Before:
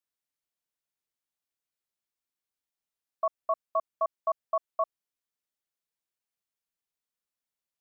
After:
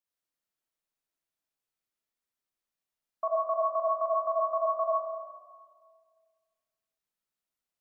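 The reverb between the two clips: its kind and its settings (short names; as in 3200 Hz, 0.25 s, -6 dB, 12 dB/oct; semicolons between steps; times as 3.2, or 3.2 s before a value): digital reverb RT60 1.8 s, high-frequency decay 0.35×, pre-delay 30 ms, DRR -2.5 dB; gain -3 dB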